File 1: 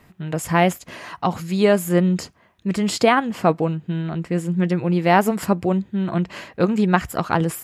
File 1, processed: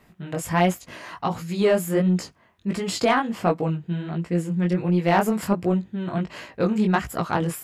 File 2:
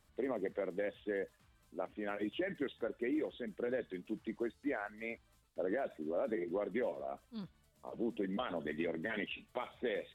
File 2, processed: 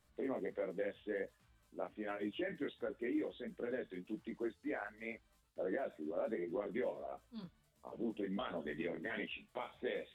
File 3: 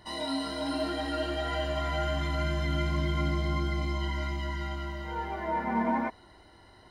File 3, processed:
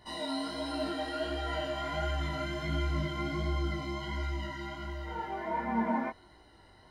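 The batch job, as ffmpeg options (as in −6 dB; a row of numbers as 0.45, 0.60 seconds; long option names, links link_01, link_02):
-af "flanger=delay=16.5:depth=6.7:speed=1.4,aeval=exprs='0.562*(cos(1*acos(clip(val(0)/0.562,-1,1)))-cos(1*PI/2))+0.0316*(cos(5*acos(clip(val(0)/0.562,-1,1)))-cos(5*PI/2))':channel_layout=same,volume=-2dB"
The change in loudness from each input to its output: −3.0, −2.5, −3.5 LU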